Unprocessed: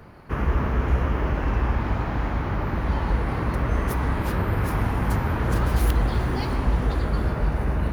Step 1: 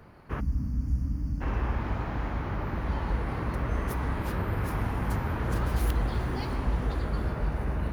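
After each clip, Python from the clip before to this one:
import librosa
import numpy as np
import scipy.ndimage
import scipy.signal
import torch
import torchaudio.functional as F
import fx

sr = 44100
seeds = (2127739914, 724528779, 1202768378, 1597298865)

y = fx.spec_box(x, sr, start_s=0.4, length_s=1.01, low_hz=320.0, high_hz=4400.0, gain_db=-23)
y = y * 10.0 ** (-6.0 / 20.0)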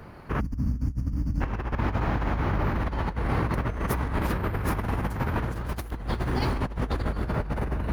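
y = fx.over_compress(x, sr, threshold_db=-31.0, ratio=-0.5)
y = y * 10.0 ** (4.5 / 20.0)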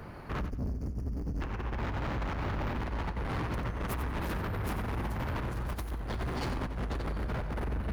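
y = 10.0 ** (-31.0 / 20.0) * np.tanh(x / 10.0 ** (-31.0 / 20.0))
y = fx.echo_feedback(y, sr, ms=91, feedback_pct=21, wet_db=-10.5)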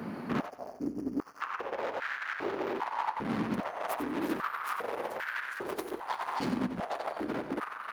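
y = fx.rider(x, sr, range_db=10, speed_s=0.5)
y = fx.filter_held_highpass(y, sr, hz=2.5, low_hz=220.0, high_hz=1600.0)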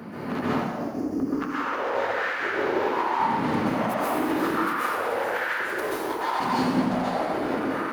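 y = fx.rev_plate(x, sr, seeds[0], rt60_s=1.3, hf_ratio=0.85, predelay_ms=115, drr_db=-8.5)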